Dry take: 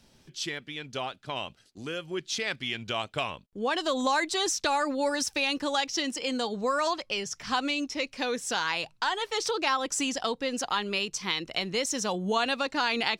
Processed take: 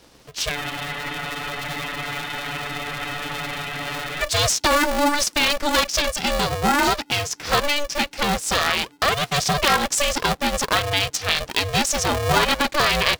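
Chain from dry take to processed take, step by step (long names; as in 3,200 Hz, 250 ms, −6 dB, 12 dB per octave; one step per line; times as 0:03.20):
frozen spectrum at 0:00.57, 3.65 s
ring modulator with a square carrier 290 Hz
level +8.5 dB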